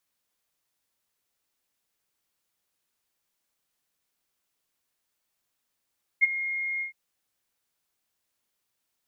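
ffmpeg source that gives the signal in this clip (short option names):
-f lavfi -i "aevalsrc='0.211*sin(2*PI*2140*t)':d=0.714:s=44100,afade=t=in:d=0.026,afade=t=out:st=0.026:d=0.022:silence=0.2,afade=t=out:st=0.6:d=0.114"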